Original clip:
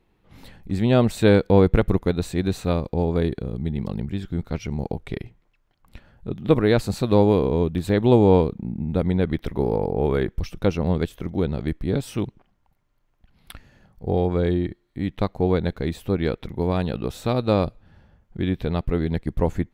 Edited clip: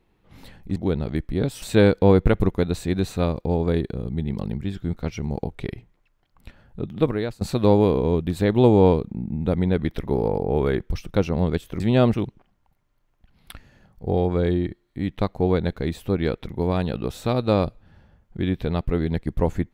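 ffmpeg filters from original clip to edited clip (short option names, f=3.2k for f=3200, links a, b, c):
-filter_complex "[0:a]asplit=6[a][b][c][d][e][f];[a]atrim=end=0.762[g];[b]atrim=start=11.278:end=12.142[h];[c]atrim=start=1.098:end=6.89,asetpts=PTS-STARTPTS,afade=t=out:st=5.252:d=0.54:silence=0.0794328[i];[d]atrim=start=6.89:end=11.282,asetpts=PTS-STARTPTS,afade=t=in:d=0.004:c=hsin:silence=0.0794328[j];[e]atrim=start=0.758:end=1.102[k];[f]atrim=start=12.138[l];[g][h]acrossfade=d=0.004:c1=hsin:c2=hsin[m];[i][j]concat=n=2:v=0:a=1[n];[m][n]acrossfade=d=0.004:c1=hsin:c2=hsin[o];[o][k]acrossfade=d=0.004:c1=hsin:c2=hsin[p];[p][l]acrossfade=d=0.004:c1=hsin:c2=hsin"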